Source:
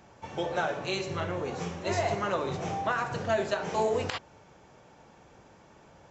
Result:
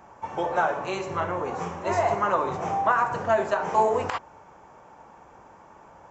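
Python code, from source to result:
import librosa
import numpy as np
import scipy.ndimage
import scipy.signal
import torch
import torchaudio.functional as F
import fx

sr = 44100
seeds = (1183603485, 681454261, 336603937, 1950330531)

y = fx.graphic_eq(x, sr, hz=(125, 1000, 4000), db=(-4, 10, -9))
y = y * librosa.db_to_amplitude(1.5)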